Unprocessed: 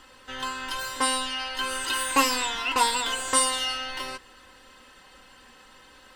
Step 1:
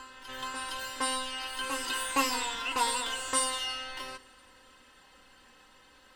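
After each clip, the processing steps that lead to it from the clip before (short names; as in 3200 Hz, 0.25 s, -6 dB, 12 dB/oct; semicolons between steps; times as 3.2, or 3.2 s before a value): reverse echo 0.464 s -9.5 dB; reverb, pre-delay 3 ms, DRR 16.5 dB; gain -6.5 dB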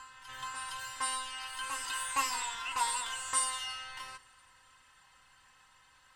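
graphic EQ 125/250/500/1000/2000/8000 Hz +10/-10/-7/+7/+4/+8 dB; gain -8.5 dB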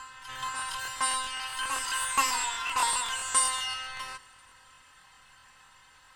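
crackling interface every 0.13 s, samples 1024, repeat, from 0.31; gain +6 dB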